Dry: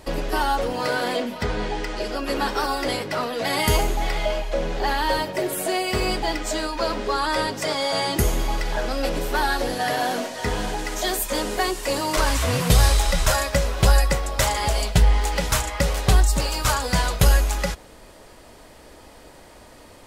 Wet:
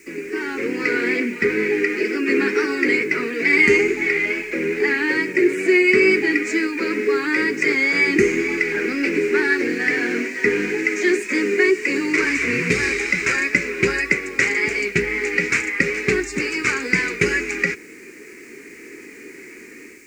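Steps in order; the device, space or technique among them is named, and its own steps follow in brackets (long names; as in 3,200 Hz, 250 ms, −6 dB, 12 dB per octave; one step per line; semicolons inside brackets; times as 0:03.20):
dictaphone (band-pass filter 290–3,600 Hz; automatic gain control gain up to 11.5 dB; tape wow and flutter; white noise bed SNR 29 dB)
drawn EQ curve 110 Hz 0 dB, 410 Hz +8 dB, 610 Hz −25 dB, 990 Hz −17 dB, 2,300 Hz +13 dB, 3,300 Hz −16 dB, 4,700 Hz −4 dB, 7,200 Hz +5 dB, 11,000 Hz −7 dB
level −4 dB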